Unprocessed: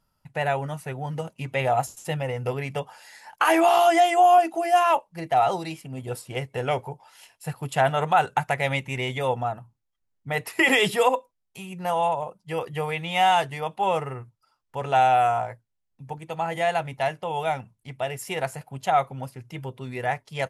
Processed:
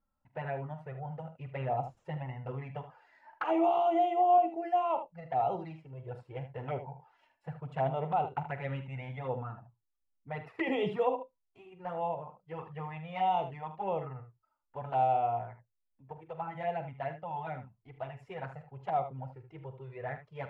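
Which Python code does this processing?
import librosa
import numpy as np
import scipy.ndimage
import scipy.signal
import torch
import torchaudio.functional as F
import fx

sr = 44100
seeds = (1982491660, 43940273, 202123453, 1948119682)

p1 = scipy.signal.sosfilt(scipy.signal.butter(2, 1500.0, 'lowpass', fs=sr, output='sos'), x)
p2 = fx.env_flanger(p1, sr, rest_ms=3.7, full_db=-19.0)
p3 = p2 + fx.room_early_taps(p2, sr, ms=(45, 76), db=(-13.0, -11.0), dry=0)
y = p3 * librosa.db_to_amplitude(-7.0)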